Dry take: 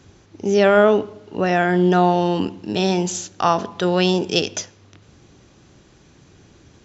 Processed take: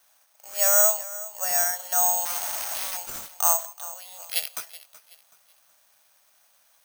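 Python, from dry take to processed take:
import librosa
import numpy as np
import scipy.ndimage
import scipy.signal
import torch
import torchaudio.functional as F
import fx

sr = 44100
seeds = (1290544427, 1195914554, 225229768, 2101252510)

y = fx.clip_1bit(x, sr, at=(2.25, 2.97))
y = scipy.signal.sosfilt(scipy.signal.ellip(4, 1.0, 40, 610.0, 'highpass', fs=sr, output='sos'), y)
y = fx.level_steps(y, sr, step_db=20, at=(3.72, 4.19), fade=0.02)
y = fx.air_absorb(y, sr, metres=65.0)
y = fx.echo_feedback(y, sr, ms=376, feedback_pct=35, wet_db=-17)
y = (np.kron(y[::6], np.eye(6)[0]) * 6)[:len(y)]
y = y * librosa.db_to_amplitude(-10.0)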